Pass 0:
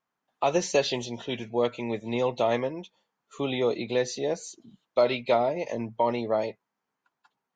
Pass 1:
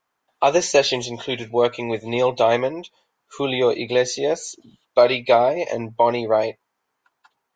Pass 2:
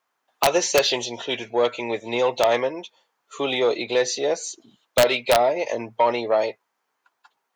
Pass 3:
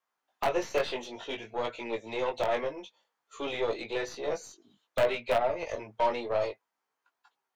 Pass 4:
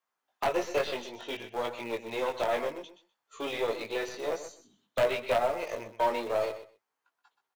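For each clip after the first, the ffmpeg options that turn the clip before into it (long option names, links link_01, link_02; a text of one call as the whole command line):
ffmpeg -i in.wav -af "equalizer=frequency=190:width_type=o:width=0.99:gain=-9.5,volume=8.5dB" out.wav
ffmpeg -i in.wav -af "acontrast=74,highpass=frequency=360:poles=1,aeval=exprs='(mod(1.33*val(0)+1,2)-1)/1.33':channel_layout=same,volume=-6dB" out.wav
ffmpeg -i in.wav -filter_complex "[0:a]flanger=delay=17.5:depth=3:speed=0.56,aeval=exprs='0.376*(cos(1*acos(clip(val(0)/0.376,-1,1)))-cos(1*PI/2))+0.0211*(cos(8*acos(clip(val(0)/0.376,-1,1)))-cos(8*PI/2))':channel_layout=same,acrossover=split=390|1600|2800[link_01][link_02][link_03][link_04];[link_04]acompressor=threshold=-41dB:ratio=10[link_05];[link_01][link_02][link_03][link_05]amix=inputs=4:normalize=0,volume=-6dB" out.wav
ffmpeg -i in.wav -filter_complex "[0:a]asplit=2[link_01][link_02];[link_02]acrusher=bits=3:dc=4:mix=0:aa=0.000001,volume=-9.5dB[link_03];[link_01][link_03]amix=inputs=2:normalize=0,aecho=1:1:126|252:0.251|0.0377,volume=-1.5dB" out.wav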